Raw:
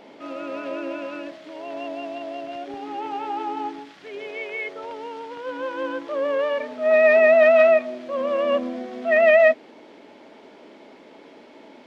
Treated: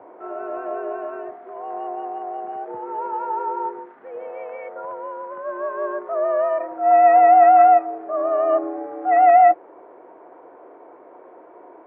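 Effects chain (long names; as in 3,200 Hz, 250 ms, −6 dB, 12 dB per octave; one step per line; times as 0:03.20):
low-pass filter 1,300 Hz 24 dB per octave
parametric band 210 Hz −4 dB 2.5 octaves
frequency shifter +76 Hz
level +4.5 dB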